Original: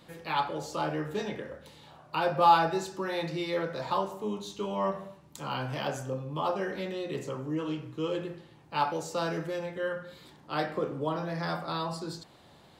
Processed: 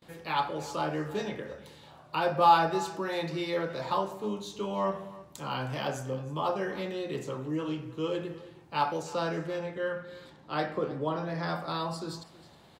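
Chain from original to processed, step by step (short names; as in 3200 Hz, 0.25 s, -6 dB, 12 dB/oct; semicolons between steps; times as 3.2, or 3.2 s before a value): echo 0.316 s -18.5 dB; gate with hold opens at -49 dBFS; 9.02–11.56 high shelf 9400 Hz -11.5 dB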